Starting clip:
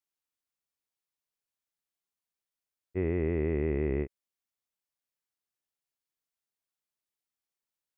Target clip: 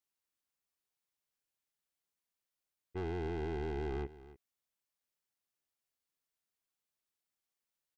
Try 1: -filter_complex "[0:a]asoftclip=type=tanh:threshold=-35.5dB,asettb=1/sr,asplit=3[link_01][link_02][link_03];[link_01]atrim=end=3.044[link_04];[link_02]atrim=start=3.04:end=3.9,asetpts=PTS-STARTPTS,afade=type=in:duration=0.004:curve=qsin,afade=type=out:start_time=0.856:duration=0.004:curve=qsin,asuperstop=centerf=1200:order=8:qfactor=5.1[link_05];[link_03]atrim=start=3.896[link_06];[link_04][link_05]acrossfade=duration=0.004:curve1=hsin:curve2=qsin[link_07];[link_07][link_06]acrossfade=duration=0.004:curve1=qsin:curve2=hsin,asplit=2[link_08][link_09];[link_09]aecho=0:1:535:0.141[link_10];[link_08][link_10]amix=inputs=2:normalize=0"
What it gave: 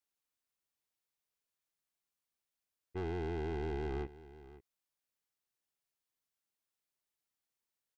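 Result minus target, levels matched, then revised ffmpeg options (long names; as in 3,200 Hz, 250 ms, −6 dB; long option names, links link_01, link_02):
echo 243 ms late
-filter_complex "[0:a]asoftclip=type=tanh:threshold=-35.5dB,asettb=1/sr,asplit=3[link_01][link_02][link_03];[link_01]atrim=end=3.044[link_04];[link_02]atrim=start=3.04:end=3.9,asetpts=PTS-STARTPTS,afade=type=in:duration=0.004:curve=qsin,afade=type=out:start_time=0.856:duration=0.004:curve=qsin,asuperstop=centerf=1200:order=8:qfactor=5.1[link_05];[link_03]atrim=start=3.896[link_06];[link_04][link_05]acrossfade=duration=0.004:curve1=hsin:curve2=qsin[link_07];[link_07][link_06]acrossfade=duration=0.004:curve1=qsin:curve2=hsin,asplit=2[link_08][link_09];[link_09]aecho=0:1:292:0.141[link_10];[link_08][link_10]amix=inputs=2:normalize=0"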